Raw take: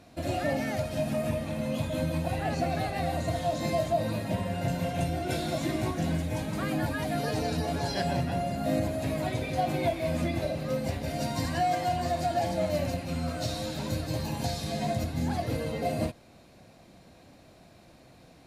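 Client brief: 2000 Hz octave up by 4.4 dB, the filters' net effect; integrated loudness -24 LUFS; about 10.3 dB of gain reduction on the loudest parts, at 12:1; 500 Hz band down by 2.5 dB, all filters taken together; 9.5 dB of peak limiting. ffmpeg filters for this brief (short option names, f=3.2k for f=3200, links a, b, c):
-af "equalizer=f=500:t=o:g=-4,equalizer=f=2k:t=o:g=5.5,acompressor=threshold=-35dB:ratio=12,volume=19.5dB,alimiter=limit=-15.5dB:level=0:latency=1"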